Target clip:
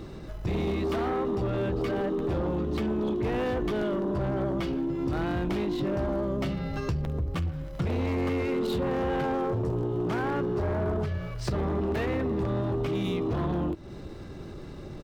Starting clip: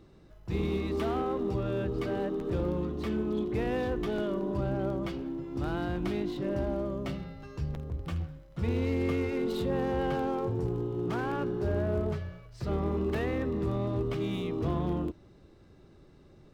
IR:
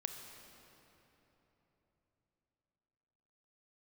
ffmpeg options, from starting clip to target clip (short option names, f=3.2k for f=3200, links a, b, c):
-af "aeval=exprs='0.133*(cos(1*acos(clip(val(0)/0.133,-1,1)))-cos(1*PI/2))+0.00531*(cos(3*acos(clip(val(0)/0.133,-1,1)))-cos(3*PI/2))+0.0596*(cos(5*acos(clip(val(0)/0.133,-1,1)))-cos(5*PI/2))+0.000841*(cos(6*acos(clip(val(0)/0.133,-1,1)))-cos(6*PI/2))+0.0075*(cos(7*acos(clip(val(0)/0.133,-1,1)))-cos(7*PI/2))':c=same,acompressor=threshold=-34dB:ratio=6,atempo=1.1,volume=7dB"